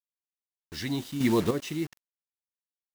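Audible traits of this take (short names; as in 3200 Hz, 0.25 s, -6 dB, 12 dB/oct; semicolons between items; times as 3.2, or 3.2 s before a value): a quantiser's noise floor 6-bit, dither none; chopped level 0.83 Hz, depth 60%, duty 25%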